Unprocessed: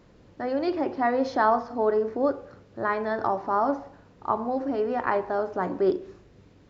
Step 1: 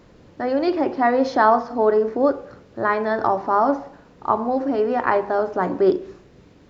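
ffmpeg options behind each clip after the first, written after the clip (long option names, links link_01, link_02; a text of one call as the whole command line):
ffmpeg -i in.wav -af "bandreject=frequency=50:width_type=h:width=6,bandreject=frequency=100:width_type=h:width=6,bandreject=frequency=150:width_type=h:width=6,bandreject=frequency=200:width_type=h:width=6,volume=6dB" out.wav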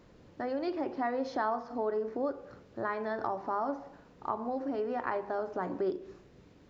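ffmpeg -i in.wav -af "acompressor=threshold=-26dB:ratio=2,volume=-8dB" out.wav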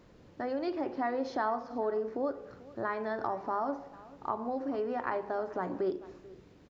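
ffmpeg -i in.wav -af "aecho=1:1:438:0.0944" out.wav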